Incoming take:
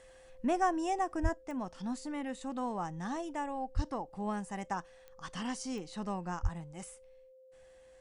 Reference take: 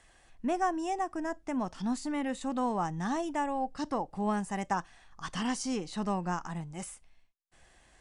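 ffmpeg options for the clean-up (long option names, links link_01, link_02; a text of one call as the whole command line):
ffmpeg -i in.wav -filter_complex "[0:a]adeclick=threshold=4,bandreject=frequency=520:width=30,asplit=3[link_01][link_02][link_03];[link_01]afade=type=out:start_time=1.22:duration=0.02[link_04];[link_02]highpass=frequency=140:width=0.5412,highpass=frequency=140:width=1.3066,afade=type=in:start_time=1.22:duration=0.02,afade=type=out:start_time=1.34:duration=0.02[link_05];[link_03]afade=type=in:start_time=1.34:duration=0.02[link_06];[link_04][link_05][link_06]amix=inputs=3:normalize=0,asplit=3[link_07][link_08][link_09];[link_07]afade=type=out:start_time=3.75:duration=0.02[link_10];[link_08]highpass=frequency=140:width=0.5412,highpass=frequency=140:width=1.3066,afade=type=in:start_time=3.75:duration=0.02,afade=type=out:start_time=3.87:duration=0.02[link_11];[link_09]afade=type=in:start_time=3.87:duration=0.02[link_12];[link_10][link_11][link_12]amix=inputs=3:normalize=0,asplit=3[link_13][link_14][link_15];[link_13]afade=type=out:start_time=6.42:duration=0.02[link_16];[link_14]highpass=frequency=140:width=0.5412,highpass=frequency=140:width=1.3066,afade=type=in:start_time=6.42:duration=0.02,afade=type=out:start_time=6.54:duration=0.02[link_17];[link_15]afade=type=in:start_time=6.54:duration=0.02[link_18];[link_16][link_17][link_18]amix=inputs=3:normalize=0,asetnsamples=nb_out_samples=441:pad=0,asendcmd='1.34 volume volume 5.5dB',volume=0dB" out.wav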